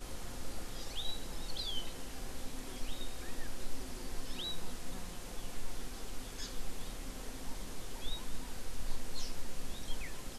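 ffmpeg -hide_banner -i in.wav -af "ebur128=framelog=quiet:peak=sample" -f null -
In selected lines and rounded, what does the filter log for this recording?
Integrated loudness:
  I:         -44.5 LUFS
  Threshold: -54.5 LUFS
Loudness range:
  LRA:         2.6 LU
  Threshold: -64.7 LUFS
  LRA low:   -45.9 LUFS
  LRA high:  -43.2 LUFS
Sample peak:
  Peak:      -20.9 dBFS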